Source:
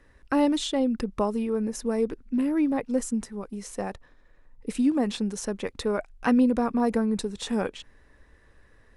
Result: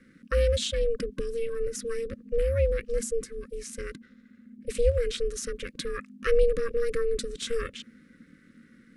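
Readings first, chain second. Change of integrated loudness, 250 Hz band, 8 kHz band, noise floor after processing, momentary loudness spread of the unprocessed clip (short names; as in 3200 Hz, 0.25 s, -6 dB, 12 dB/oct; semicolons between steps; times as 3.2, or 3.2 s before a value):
-2.5 dB, -20.0 dB, +0.5 dB, -58 dBFS, 12 LU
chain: brick-wall FIR band-stop 340–1300 Hz; ring modulator 230 Hz; gain +3.5 dB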